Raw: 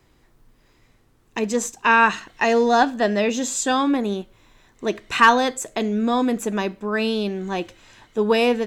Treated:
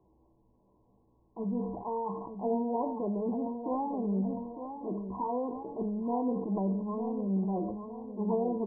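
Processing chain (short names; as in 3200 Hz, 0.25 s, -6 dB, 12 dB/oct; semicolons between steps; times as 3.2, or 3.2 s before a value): low shelf 77 Hz -11.5 dB; transient shaper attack -11 dB, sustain +1 dB; compressor 10:1, threshold -23 dBFS, peak gain reduction 12 dB; resonator 65 Hz, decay 0.49 s, harmonics odd, mix 80%; formant shift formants -3 st; brick-wall FIR low-pass 1100 Hz; doubler 16 ms -10.5 dB; feedback echo 0.906 s, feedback 40%, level -9 dB; sustainer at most 46 dB/s; gain +5.5 dB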